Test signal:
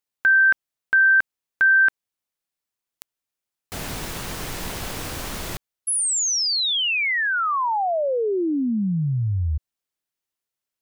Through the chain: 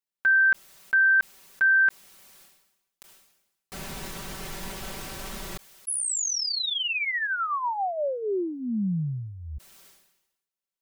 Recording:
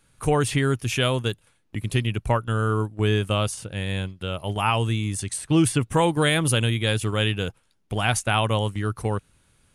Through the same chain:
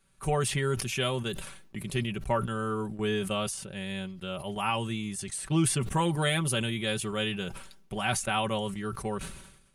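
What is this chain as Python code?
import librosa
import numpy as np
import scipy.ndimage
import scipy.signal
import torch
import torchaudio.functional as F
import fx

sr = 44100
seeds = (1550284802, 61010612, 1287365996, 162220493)

y = x + 0.7 * np.pad(x, (int(5.2 * sr / 1000.0), 0))[:len(x)]
y = fx.sustainer(y, sr, db_per_s=62.0)
y = y * librosa.db_to_amplitude(-8.0)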